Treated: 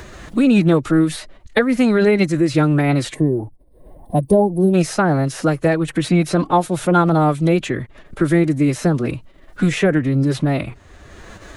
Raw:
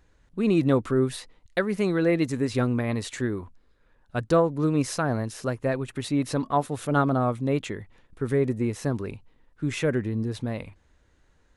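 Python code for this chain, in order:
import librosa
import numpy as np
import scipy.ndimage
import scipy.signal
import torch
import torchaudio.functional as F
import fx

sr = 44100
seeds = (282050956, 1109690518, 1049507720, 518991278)

y = fx.spec_box(x, sr, start_s=3.14, length_s=1.6, low_hz=910.0, high_hz=8300.0, gain_db=-23)
y = fx.pitch_keep_formants(y, sr, semitones=3.5)
y = fx.band_squash(y, sr, depth_pct=70)
y = y * 10.0 ** (9.0 / 20.0)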